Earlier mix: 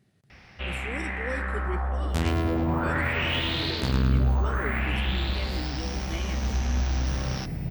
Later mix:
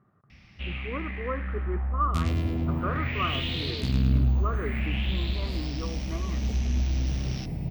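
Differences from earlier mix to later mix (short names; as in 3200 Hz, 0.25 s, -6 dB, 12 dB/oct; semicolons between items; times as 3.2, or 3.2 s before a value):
speech: add synth low-pass 1200 Hz, resonance Q 11; first sound: add band shelf 780 Hz -12 dB 2.6 oct; master: add high shelf 3900 Hz -6.5 dB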